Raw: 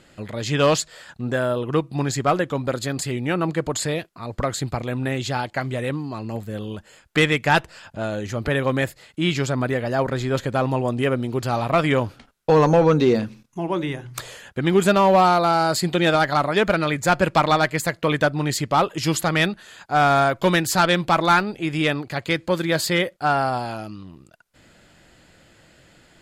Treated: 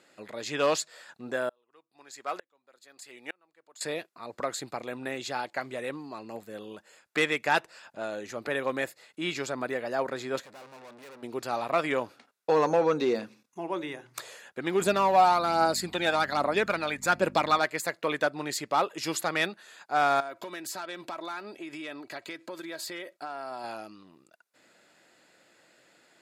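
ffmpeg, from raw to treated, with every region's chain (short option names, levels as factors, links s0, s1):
-filter_complex "[0:a]asettb=1/sr,asplit=3[s0][s1][s2];[s0]atrim=end=1.494[s3];[s1]atrim=start=1.49:end=3.81,asetpts=PTS-STARTPTS,afade=t=in:d=0.004:c=qsin,afade=t=out:st=2.316:d=0.004:c=qsin,highpass=f=850:p=1,aeval=exprs='val(0)*pow(10,-36*if(lt(mod(-1.1*n/s,1),2*abs(-1.1)/1000),1-mod(-1.1*n/s,1)/(2*abs(-1.1)/1000),(mod(-1.1*n/s,1)-2*abs(-1.1)/1000)/(1-2*abs(-1.1)/1000))/20)':c=same[s4];[s2]atrim=start=3.806[s5];[s3][s4]acrossfade=d=0.004:c1=hsin:c2=qsin[s6];[s6][s5]acrossfade=d=0.004:c1=qsin:c2=hsin,asettb=1/sr,asplit=3[s7][s8][s9];[s7]atrim=end=10.424[s10];[s8]atrim=start=10.42:end=11.23,asetpts=PTS-STARTPTS,afade=t=in:d=0.004:c=qsin,afade=t=out:st=0.806:d=0.004:c=qsin,equalizer=f=360:w=3.1:g=-8,aeval=exprs='(tanh(79.4*val(0)+0.75)-tanh(0.75))/79.4':c=same[s11];[s9]atrim=start=11.226[s12];[s10][s11]acrossfade=d=0.004:c1=hsin:c2=qsin[s13];[s13][s12]acrossfade=d=0.004:c1=qsin:c2=hsin,asettb=1/sr,asplit=3[s14][s15][s16];[s14]atrim=end=14.804[s17];[s15]atrim=start=14.8:end=17.59,asetpts=PTS-STARTPTS,afade=t=in:d=0.004:c=qsin,afade=t=out:st=2.786:d=0.004:c=qsin,aeval=exprs='val(0)+0.0447*(sin(2*PI*50*n/s)+sin(2*PI*2*50*n/s)/2+sin(2*PI*3*50*n/s)/3+sin(2*PI*4*50*n/s)/4+sin(2*PI*5*50*n/s)/5)':c=same,aphaser=in_gain=1:out_gain=1:delay=1.4:decay=0.46:speed=1.2:type=triangular[s18];[s16]atrim=start=17.586[s19];[s17][s18]acrossfade=d=0.004:c1=hsin:c2=qsin[s20];[s20][s19]acrossfade=d=0.004:c1=qsin:c2=hsin,asettb=1/sr,asplit=3[s21][s22][s23];[s21]atrim=end=20.204[s24];[s22]atrim=start=20.2:end=23.64,asetpts=PTS-STARTPTS,afade=t=in:d=0.004:c=qsin,afade=t=out:st=3.436:d=0.004:c=qsin,aecho=1:1:3.1:0.42,atrim=end_sample=151704,acompressor=threshold=0.0501:ratio=16:attack=3.2:release=140:knee=1:detection=peak[s25];[s23]atrim=start=23.636[s26];[s24][s25]acrossfade=d=0.004:c1=hsin:c2=qsin[s27];[s27][s26]acrossfade=d=0.004:c1=qsin:c2=hsin,highpass=330,bandreject=f=3100:w=12,volume=0.473"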